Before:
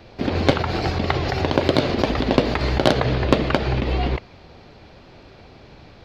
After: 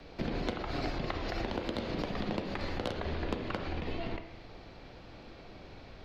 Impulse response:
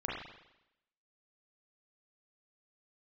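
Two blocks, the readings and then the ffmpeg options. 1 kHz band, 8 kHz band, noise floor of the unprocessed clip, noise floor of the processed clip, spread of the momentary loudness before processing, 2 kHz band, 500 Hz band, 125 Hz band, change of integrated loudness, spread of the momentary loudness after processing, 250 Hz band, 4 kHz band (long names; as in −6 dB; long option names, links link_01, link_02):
−15.0 dB, −16.0 dB, −47 dBFS, −51 dBFS, 4 LU, −14.5 dB, −16.0 dB, −17.0 dB, −15.5 dB, 15 LU, −14.5 dB, −15.5 dB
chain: -filter_complex "[0:a]acompressor=threshold=-26dB:ratio=10,afreqshift=-50,asplit=2[link_01][link_02];[1:a]atrim=start_sample=2205,asetrate=43218,aresample=44100[link_03];[link_02][link_03]afir=irnorm=-1:irlink=0,volume=-7dB[link_04];[link_01][link_04]amix=inputs=2:normalize=0,volume=-8dB"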